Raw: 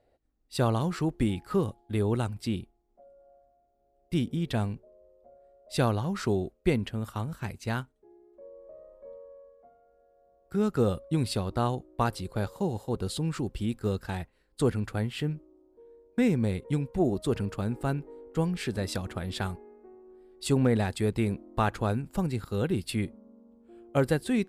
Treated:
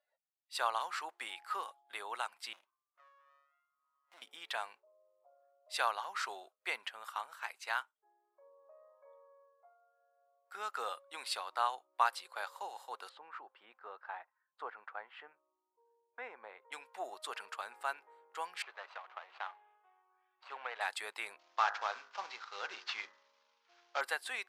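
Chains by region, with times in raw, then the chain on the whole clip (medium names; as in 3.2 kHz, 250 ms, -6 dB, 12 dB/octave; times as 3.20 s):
2.53–4.22 s: compression 2:1, threshold -47 dBFS + sliding maximum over 33 samples
13.09–16.72 s: low-pass 1.2 kHz + bass shelf 310 Hz -5.5 dB
18.62–20.81 s: median filter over 25 samples + high-pass 530 Hz + distance through air 200 m
21.39–24.01 s: CVSD coder 32 kbps + de-hum 51.47 Hz, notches 39
whole clip: high-pass 890 Hz 24 dB/octave; spectral noise reduction 15 dB; treble shelf 4 kHz -9 dB; trim +2.5 dB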